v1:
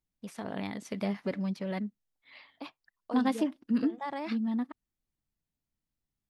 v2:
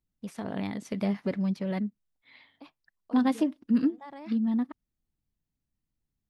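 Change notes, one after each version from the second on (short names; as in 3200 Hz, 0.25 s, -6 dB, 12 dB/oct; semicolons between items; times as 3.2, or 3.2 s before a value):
second voice -9.5 dB; master: add low shelf 340 Hz +6 dB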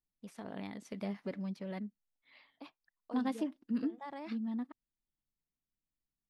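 first voice -8.5 dB; master: add bell 79 Hz -7.5 dB 2 oct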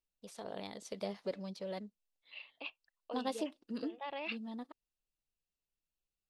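second voice: add synth low-pass 2700 Hz, resonance Q 12; master: add graphic EQ 125/250/500/2000/4000/8000 Hz -4/-8/+7/-5/+8/+6 dB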